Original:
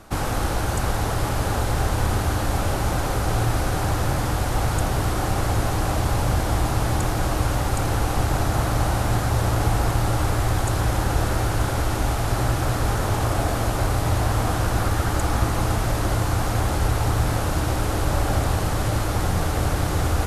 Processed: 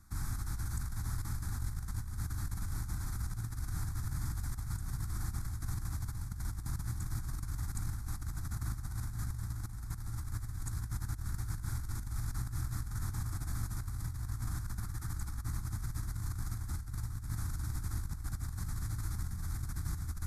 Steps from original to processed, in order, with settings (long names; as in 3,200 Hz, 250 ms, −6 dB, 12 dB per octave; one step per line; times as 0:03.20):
guitar amp tone stack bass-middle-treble 6-0-2
compressor whose output falls as the input rises −37 dBFS, ratio −0.5
phaser with its sweep stopped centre 1,200 Hz, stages 4
level +1.5 dB